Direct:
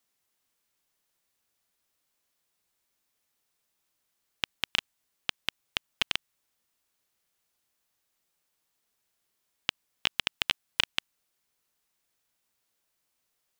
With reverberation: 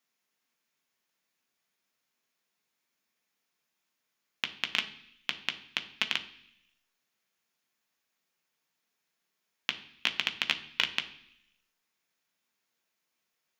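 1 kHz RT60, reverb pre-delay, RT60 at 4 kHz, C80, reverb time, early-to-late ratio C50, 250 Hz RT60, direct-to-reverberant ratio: 0.70 s, 3 ms, 0.90 s, 16.5 dB, 0.70 s, 14.0 dB, 0.95 s, 6.0 dB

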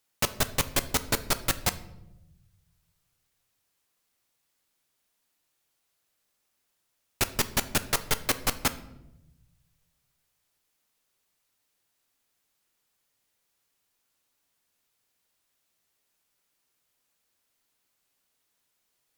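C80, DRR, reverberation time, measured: 18.0 dB, 11.0 dB, 0.95 s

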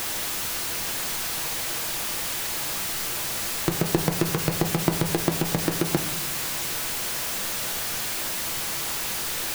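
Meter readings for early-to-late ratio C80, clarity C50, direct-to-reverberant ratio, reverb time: 13.5 dB, 10.5 dB, 5.0 dB, 0.80 s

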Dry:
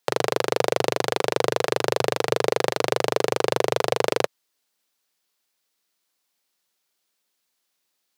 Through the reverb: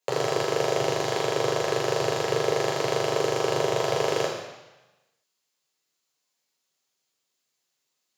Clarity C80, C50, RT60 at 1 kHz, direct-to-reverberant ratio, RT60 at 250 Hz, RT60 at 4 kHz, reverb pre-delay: 6.0 dB, 3.0 dB, 1.1 s, −3.0 dB, 1.0 s, 1.1 s, 3 ms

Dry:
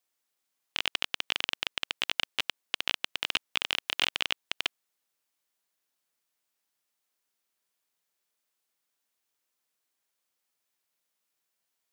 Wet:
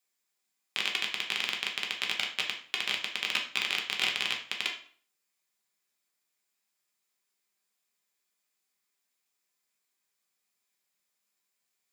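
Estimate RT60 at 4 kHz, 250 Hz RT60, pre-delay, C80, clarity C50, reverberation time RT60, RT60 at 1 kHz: 0.40 s, 0.50 s, 3 ms, 13.0 dB, 8.0 dB, 0.50 s, 0.50 s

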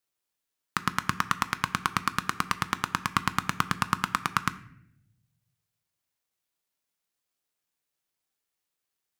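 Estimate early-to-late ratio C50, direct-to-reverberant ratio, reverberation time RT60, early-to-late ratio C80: 16.0 dB, 12.0 dB, 0.75 s, 18.5 dB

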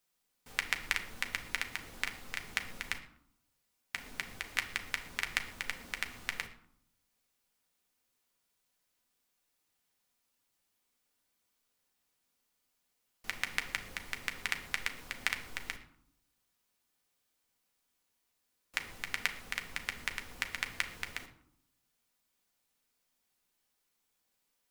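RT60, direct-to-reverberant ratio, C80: 0.70 s, 4.0 dB, 14.5 dB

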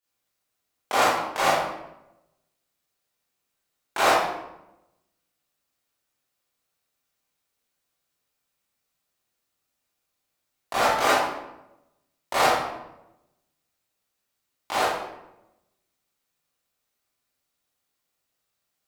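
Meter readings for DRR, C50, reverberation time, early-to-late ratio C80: −11.5 dB, −1.5 dB, 0.90 s, 2.5 dB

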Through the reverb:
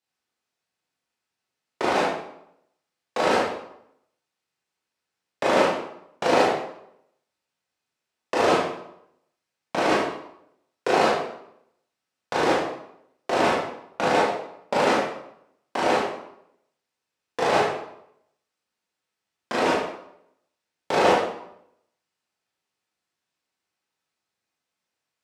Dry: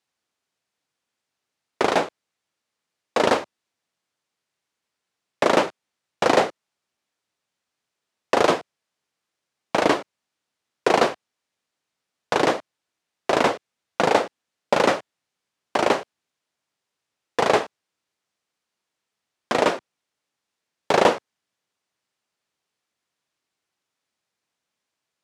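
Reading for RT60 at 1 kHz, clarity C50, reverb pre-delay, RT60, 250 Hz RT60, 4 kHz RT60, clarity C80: 0.75 s, 0.5 dB, 18 ms, 0.75 s, 0.75 s, 0.60 s, 5.0 dB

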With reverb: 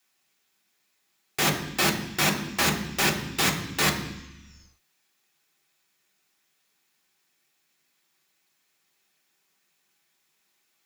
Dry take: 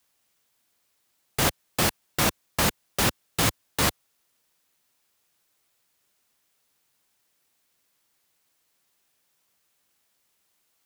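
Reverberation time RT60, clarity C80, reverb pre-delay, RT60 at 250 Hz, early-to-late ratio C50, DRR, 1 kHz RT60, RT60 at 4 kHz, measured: 1.0 s, 11.0 dB, 3 ms, 1.4 s, 8.5 dB, 0.0 dB, 1.0 s, 2.0 s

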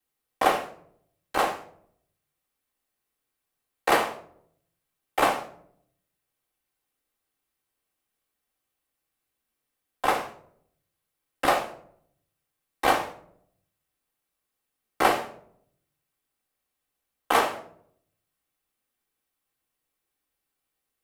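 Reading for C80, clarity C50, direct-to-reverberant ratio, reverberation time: 15.0 dB, 11.0 dB, −9.5 dB, 0.60 s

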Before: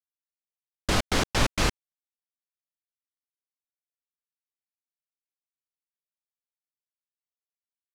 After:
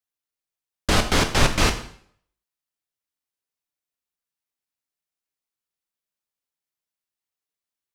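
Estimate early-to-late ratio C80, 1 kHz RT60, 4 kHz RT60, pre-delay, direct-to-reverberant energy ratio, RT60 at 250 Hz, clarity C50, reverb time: 14.0 dB, 0.55 s, 0.55 s, 7 ms, 6.0 dB, 0.60 s, 11.0 dB, 0.60 s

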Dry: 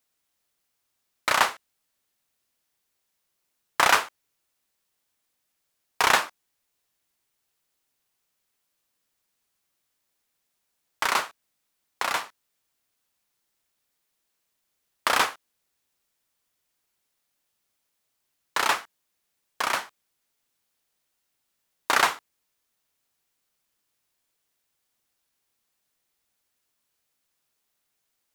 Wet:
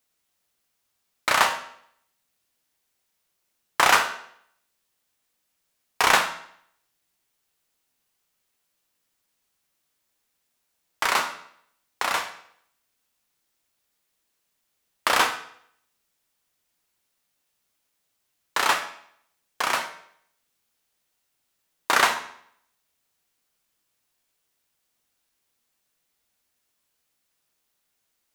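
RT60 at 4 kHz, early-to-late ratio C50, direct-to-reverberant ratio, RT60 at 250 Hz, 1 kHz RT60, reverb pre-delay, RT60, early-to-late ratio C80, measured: 0.60 s, 10.0 dB, 5.5 dB, 0.65 s, 0.65 s, 12 ms, 0.65 s, 13.0 dB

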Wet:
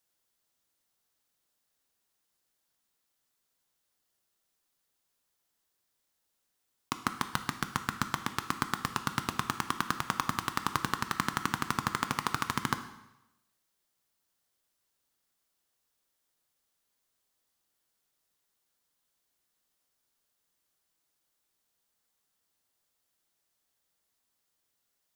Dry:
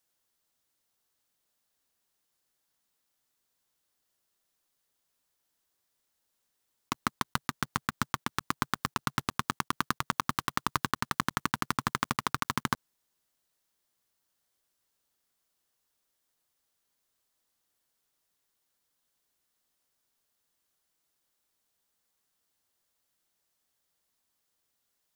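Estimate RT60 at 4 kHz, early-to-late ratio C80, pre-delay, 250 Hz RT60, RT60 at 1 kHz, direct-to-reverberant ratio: 0.85 s, 14.0 dB, 7 ms, 0.90 s, 0.95 s, 8.5 dB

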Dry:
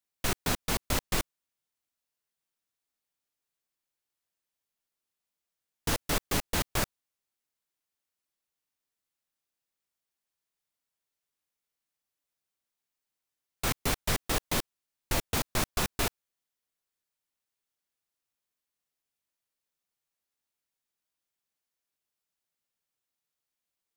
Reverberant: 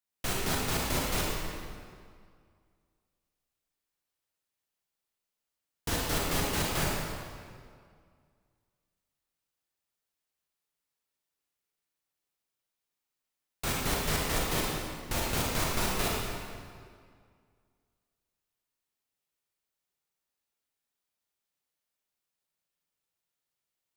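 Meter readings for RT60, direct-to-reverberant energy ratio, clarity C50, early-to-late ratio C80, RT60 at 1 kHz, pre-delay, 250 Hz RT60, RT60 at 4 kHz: 2.1 s, −3.5 dB, −2.0 dB, 0.0 dB, 2.0 s, 26 ms, 2.1 s, 1.6 s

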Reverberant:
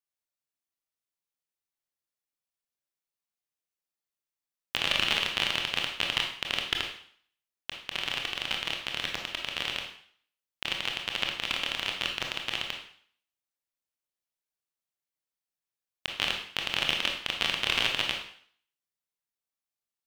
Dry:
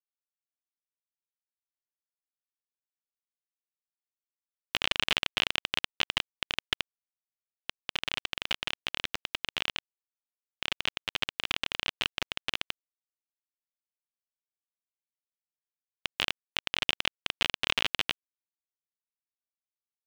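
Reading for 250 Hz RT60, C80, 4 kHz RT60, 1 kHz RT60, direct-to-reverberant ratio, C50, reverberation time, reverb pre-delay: 0.55 s, 9.0 dB, 0.55 s, 0.55 s, 1.5 dB, 5.5 dB, 0.55 s, 22 ms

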